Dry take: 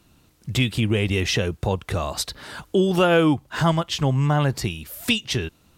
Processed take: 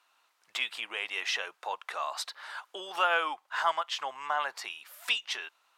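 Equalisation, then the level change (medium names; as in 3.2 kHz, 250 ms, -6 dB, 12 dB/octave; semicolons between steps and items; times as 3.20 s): high-pass 940 Hz 24 dB/octave; tilt EQ -4 dB/octave; 0.0 dB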